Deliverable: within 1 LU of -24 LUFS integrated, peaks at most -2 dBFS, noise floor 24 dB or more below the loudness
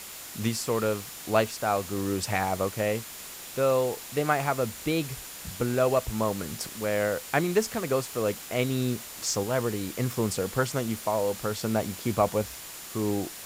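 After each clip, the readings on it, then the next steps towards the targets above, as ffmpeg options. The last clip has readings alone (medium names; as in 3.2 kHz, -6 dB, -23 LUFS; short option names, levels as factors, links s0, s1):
steady tone 7.1 kHz; tone level -51 dBFS; noise floor -42 dBFS; noise floor target -53 dBFS; loudness -28.5 LUFS; peak level -10.0 dBFS; loudness target -24.0 LUFS
-> -af "bandreject=f=7100:w=30"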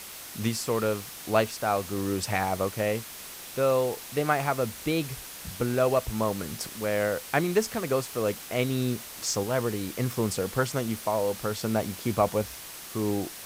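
steady tone not found; noise floor -42 dBFS; noise floor target -53 dBFS
-> -af "afftdn=nr=11:nf=-42"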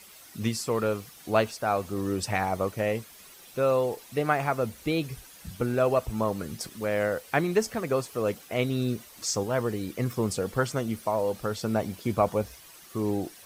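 noise floor -50 dBFS; noise floor target -53 dBFS
-> -af "afftdn=nr=6:nf=-50"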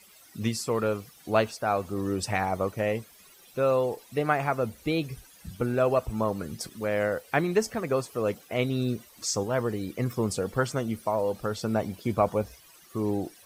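noise floor -55 dBFS; loudness -28.5 LUFS; peak level -10.0 dBFS; loudness target -24.0 LUFS
-> -af "volume=1.68"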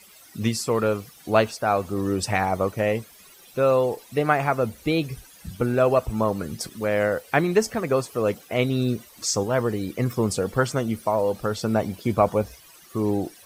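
loudness -24.0 LUFS; peak level -5.5 dBFS; noise floor -50 dBFS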